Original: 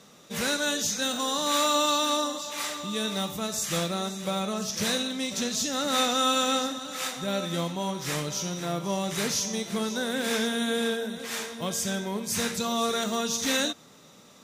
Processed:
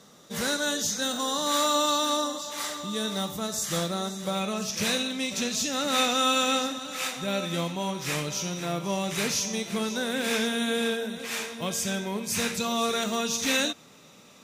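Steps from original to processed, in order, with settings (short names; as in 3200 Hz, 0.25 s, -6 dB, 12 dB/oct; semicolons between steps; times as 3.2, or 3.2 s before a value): bell 2500 Hz -7 dB 0.32 oct, from 4.35 s +6.5 dB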